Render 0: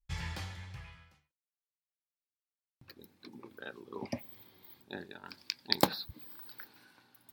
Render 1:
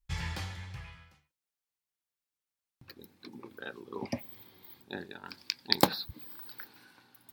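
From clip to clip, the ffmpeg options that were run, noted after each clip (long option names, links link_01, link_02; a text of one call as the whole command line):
ffmpeg -i in.wav -af "bandreject=frequency=610:width=18,volume=3dB" out.wav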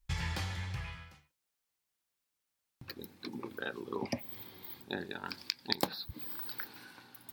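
ffmpeg -i in.wav -af "acompressor=threshold=-40dB:ratio=2.5,volume=5.5dB" out.wav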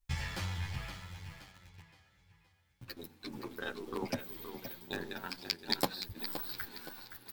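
ffmpeg -i in.wav -filter_complex "[0:a]aecho=1:1:520|1040|1560|2080|2600:0.335|0.144|0.0619|0.0266|0.0115,asplit=2[link_01][link_02];[link_02]acrusher=bits=5:dc=4:mix=0:aa=0.000001,volume=-5.5dB[link_03];[link_01][link_03]amix=inputs=2:normalize=0,asplit=2[link_04][link_05];[link_05]adelay=9.7,afreqshift=-1.6[link_06];[link_04][link_06]amix=inputs=2:normalize=1" out.wav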